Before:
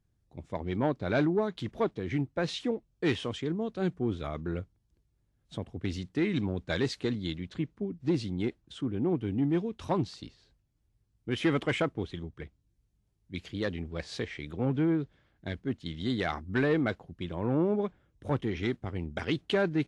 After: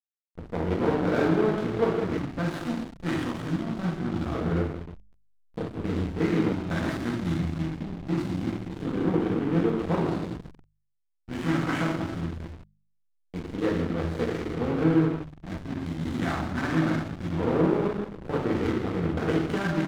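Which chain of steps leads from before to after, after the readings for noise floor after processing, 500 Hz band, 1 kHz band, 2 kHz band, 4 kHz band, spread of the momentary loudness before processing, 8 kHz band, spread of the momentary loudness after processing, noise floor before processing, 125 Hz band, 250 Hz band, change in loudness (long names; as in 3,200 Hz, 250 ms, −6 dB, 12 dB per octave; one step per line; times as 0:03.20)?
−70 dBFS, +3.5 dB, +5.5 dB, +2.5 dB, −2.0 dB, 12 LU, can't be measured, 11 LU, −74 dBFS, +5.0 dB, +4.5 dB, +4.0 dB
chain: compressor on every frequency bin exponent 0.6
downward expander −46 dBFS
high-shelf EQ 2,700 Hz −3.5 dB
flanger 0.74 Hz, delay 4.4 ms, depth 9.1 ms, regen +87%
on a send: single-tap delay 551 ms −16.5 dB
on the sum: reverb whose tail is shaped and stops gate 480 ms falling, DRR −6.5 dB
auto-filter notch square 0.23 Hz 450–5,500 Hz
slack as between gear wheels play −25.5 dBFS
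hum removal 50.55 Hz, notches 4
dynamic equaliser 1,300 Hz, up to +5 dB, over −50 dBFS, Q 3.9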